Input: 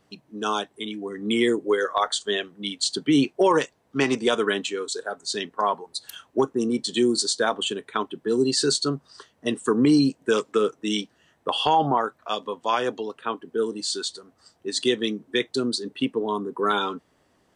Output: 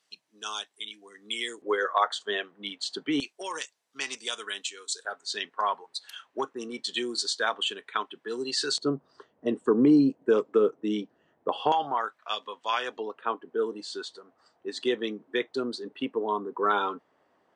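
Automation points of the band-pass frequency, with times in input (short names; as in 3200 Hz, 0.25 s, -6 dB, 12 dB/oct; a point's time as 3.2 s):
band-pass, Q 0.67
5800 Hz
from 1.62 s 1200 Hz
from 3.2 s 6800 Hz
from 5.05 s 2100 Hz
from 8.78 s 440 Hz
from 11.72 s 2500 Hz
from 12.97 s 880 Hz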